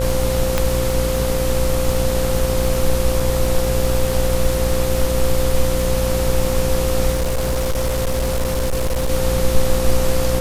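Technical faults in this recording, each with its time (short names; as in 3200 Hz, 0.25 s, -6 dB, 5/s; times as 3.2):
buzz 60 Hz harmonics 23 -22 dBFS
crackle 60/s -22 dBFS
tone 520 Hz -21 dBFS
0.58 pop -3 dBFS
3.2 gap 3 ms
7.13–9.1 clipped -15.5 dBFS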